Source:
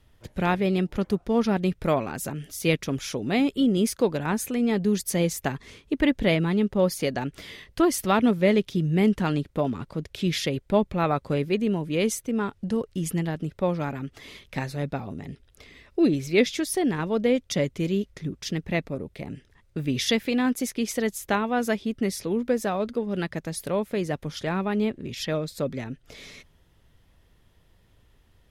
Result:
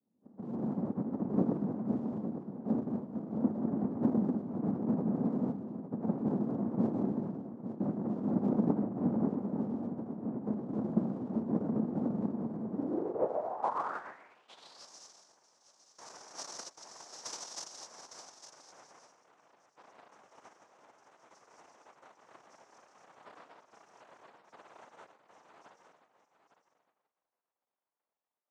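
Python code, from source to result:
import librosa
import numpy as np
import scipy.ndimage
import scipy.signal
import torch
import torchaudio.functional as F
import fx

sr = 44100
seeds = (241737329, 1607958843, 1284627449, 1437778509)

p1 = fx.filter_sweep_lowpass(x, sr, from_hz=480.0, to_hz=180.0, start_s=17.57, end_s=19.54, q=2.9)
p2 = fx.rev_gated(p1, sr, seeds[0], gate_ms=280, shape='flat', drr_db=-3.0)
p3 = fx.noise_vocoder(p2, sr, seeds[1], bands=2)
p4 = p3 + fx.echo_single(p3, sr, ms=858, db=-10.5, dry=0)
p5 = fx.filter_sweep_bandpass(p4, sr, from_hz=220.0, to_hz=5700.0, start_s=12.69, end_s=14.9, q=4.3)
y = p5 * librosa.db_to_amplitude(-7.5)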